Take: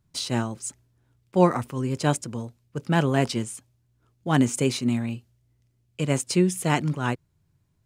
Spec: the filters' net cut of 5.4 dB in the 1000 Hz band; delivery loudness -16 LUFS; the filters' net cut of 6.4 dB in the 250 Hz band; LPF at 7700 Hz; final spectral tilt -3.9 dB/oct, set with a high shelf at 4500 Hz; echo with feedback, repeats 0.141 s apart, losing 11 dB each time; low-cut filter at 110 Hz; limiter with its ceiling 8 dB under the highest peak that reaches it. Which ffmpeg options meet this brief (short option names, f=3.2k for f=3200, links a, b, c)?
-af "highpass=110,lowpass=7.7k,equalizer=f=250:t=o:g=-8.5,equalizer=f=1k:t=o:g=-7,highshelf=f=4.5k:g=7.5,alimiter=limit=-16dB:level=0:latency=1,aecho=1:1:141|282|423:0.282|0.0789|0.0221,volume=14dB"